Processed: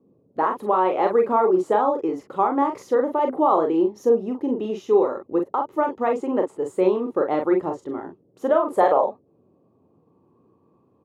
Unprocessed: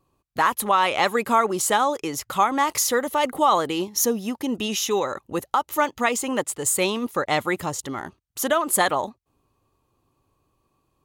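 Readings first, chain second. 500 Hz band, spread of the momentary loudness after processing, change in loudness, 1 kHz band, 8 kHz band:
+5.5 dB, 8 LU, +1.0 dB, -0.5 dB, under -25 dB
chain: band-pass sweep 370 Hz -> 900 Hz, 8.29–10.35 s; dynamic bell 970 Hz, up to +7 dB, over -44 dBFS, Q 0.85; band noise 99–470 Hz -68 dBFS; on a send: early reflections 32 ms -9.5 dB, 43 ms -5.5 dB; on the sum: trim +5.5 dB

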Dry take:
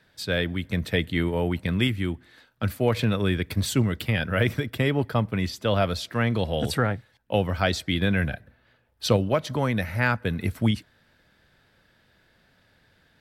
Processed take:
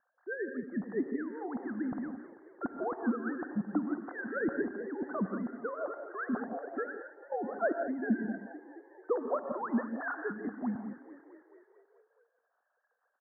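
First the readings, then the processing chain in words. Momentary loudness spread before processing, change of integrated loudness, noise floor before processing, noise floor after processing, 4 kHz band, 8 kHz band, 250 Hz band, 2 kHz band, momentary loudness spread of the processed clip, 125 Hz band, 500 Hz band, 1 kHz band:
5 LU, -10.5 dB, -63 dBFS, -80 dBFS, under -40 dB, under -40 dB, -7.0 dB, -11.0 dB, 9 LU, -24.5 dB, -8.5 dB, -7.5 dB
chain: formants replaced by sine waves; harmonic-percussive split harmonic -12 dB; steep low-pass 1.7 kHz 96 dB/octave; small resonant body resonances 250/730 Hz, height 8 dB; on a send: frequency-shifting echo 219 ms, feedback 64%, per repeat +37 Hz, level -16 dB; on the sum: gated-style reverb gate 200 ms rising, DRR 6.5 dB; trim -8.5 dB

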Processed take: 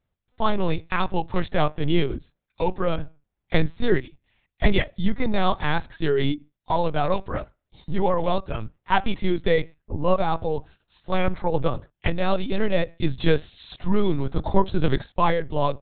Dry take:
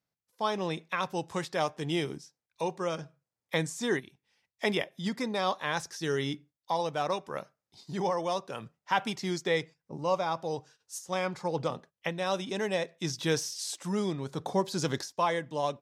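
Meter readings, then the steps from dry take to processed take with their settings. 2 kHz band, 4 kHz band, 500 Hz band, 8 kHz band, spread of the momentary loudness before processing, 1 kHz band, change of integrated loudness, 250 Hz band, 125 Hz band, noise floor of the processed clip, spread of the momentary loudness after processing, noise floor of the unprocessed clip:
+5.0 dB, +3.0 dB, +7.0 dB, under -40 dB, 8 LU, +6.0 dB, +7.0 dB, +8.5 dB, +10.5 dB, -81 dBFS, 7 LU, under -85 dBFS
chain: LPC vocoder at 8 kHz pitch kept; bass shelf 200 Hz +10.5 dB; trim +6 dB

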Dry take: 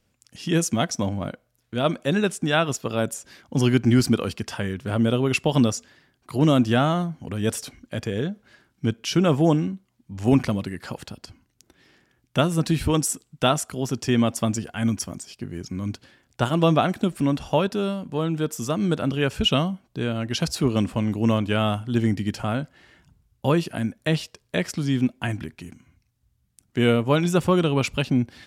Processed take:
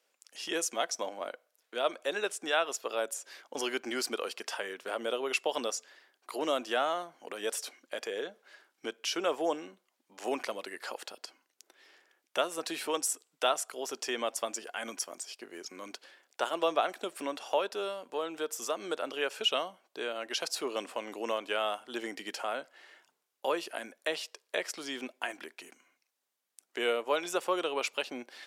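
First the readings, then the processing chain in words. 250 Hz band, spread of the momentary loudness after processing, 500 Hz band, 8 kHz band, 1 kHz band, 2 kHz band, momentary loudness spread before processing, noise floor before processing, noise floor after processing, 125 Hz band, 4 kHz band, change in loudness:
-20.5 dB, 12 LU, -7.5 dB, -5.0 dB, -6.0 dB, -5.5 dB, 13 LU, -70 dBFS, -81 dBFS, under -40 dB, -5.5 dB, -10.5 dB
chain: high-pass 430 Hz 24 dB/octave; in parallel at +2 dB: compression, threshold -34 dBFS, peak gain reduction 17.5 dB; on the sum: trim -8.5 dB

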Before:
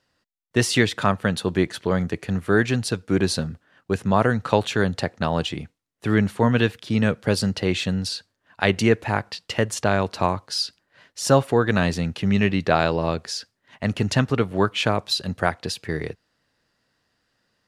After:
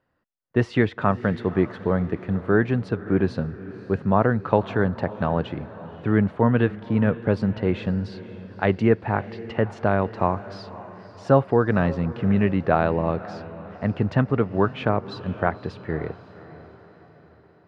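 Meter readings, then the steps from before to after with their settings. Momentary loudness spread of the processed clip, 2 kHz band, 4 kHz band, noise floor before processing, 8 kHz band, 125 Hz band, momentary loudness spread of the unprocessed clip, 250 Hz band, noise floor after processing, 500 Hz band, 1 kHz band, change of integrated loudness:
14 LU, -4.5 dB, -16.0 dB, -74 dBFS, under -25 dB, 0.0 dB, 9 LU, 0.0 dB, -53 dBFS, 0.0 dB, -0.5 dB, -0.5 dB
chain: low-pass 1.5 kHz 12 dB/octave; echo that smears into a reverb 542 ms, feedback 49%, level -16 dB

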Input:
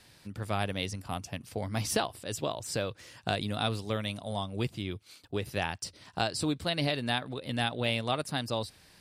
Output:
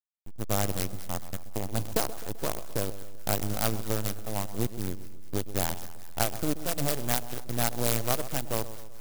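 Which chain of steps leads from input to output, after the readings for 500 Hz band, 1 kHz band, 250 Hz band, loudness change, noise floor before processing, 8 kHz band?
+0.5 dB, -0.5 dB, +0.5 dB, +2.0 dB, -59 dBFS, +7.0 dB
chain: partial rectifier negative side -12 dB; low-pass 6 kHz 24 dB/octave; level-controlled noise filter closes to 1.9 kHz, open at -28 dBFS; hysteresis with a dead band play -32 dBFS; on a send: two-band feedback delay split 1.4 kHz, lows 129 ms, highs 211 ms, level -13.5 dB; on the sum: sampling jitter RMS 0.13 ms; trim +5.5 dB

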